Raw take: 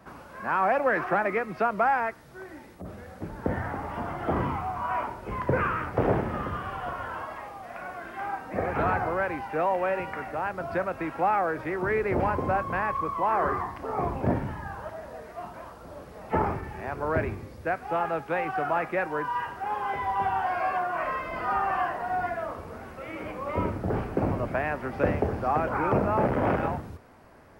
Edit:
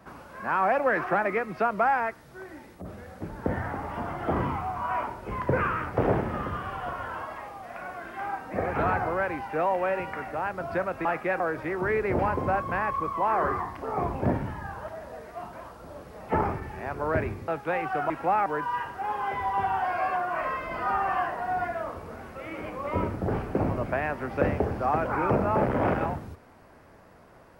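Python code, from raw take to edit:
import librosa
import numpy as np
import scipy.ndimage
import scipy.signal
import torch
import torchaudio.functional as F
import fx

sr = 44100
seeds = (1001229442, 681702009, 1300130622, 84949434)

y = fx.edit(x, sr, fx.swap(start_s=11.05, length_s=0.36, other_s=18.73, other_length_s=0.35),
    fx.cut(start_s=17.49, length_s=0.62), tone=tone)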